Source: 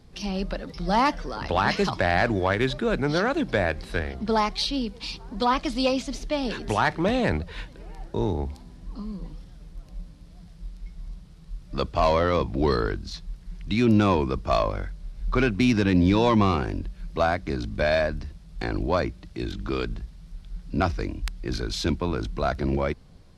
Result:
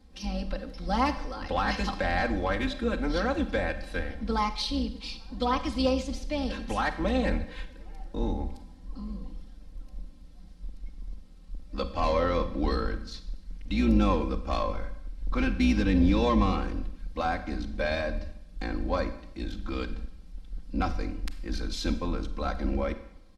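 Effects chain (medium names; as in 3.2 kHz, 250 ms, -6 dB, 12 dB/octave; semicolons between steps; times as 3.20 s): octave divider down 2 oct, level -1 dB; comb 3.8 ms, depth 100%; Schroeder reverb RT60 0.76 s, combs from 31 ms, DRR 10.5 dB; trim -8.5 dB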